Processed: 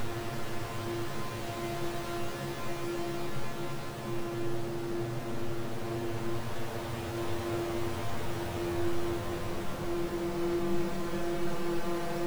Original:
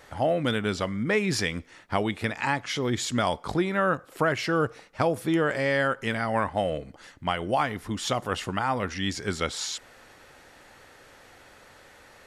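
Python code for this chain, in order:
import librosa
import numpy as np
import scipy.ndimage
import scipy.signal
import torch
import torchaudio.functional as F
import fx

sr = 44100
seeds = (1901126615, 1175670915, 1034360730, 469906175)

y = np.r_[np.sort(x[:len(x) // 128 * 128].reshape(-1, 128), axis=1).ravel(), x[len(x) // 128 * 128:]]
y = np.abs(y)
y = fx.paulstretch(y, sr, seeds[0], factor=7.7, window_s=1.0, from_s=2.22)
y = y * 10.0 ** (-3.5 / 20.0)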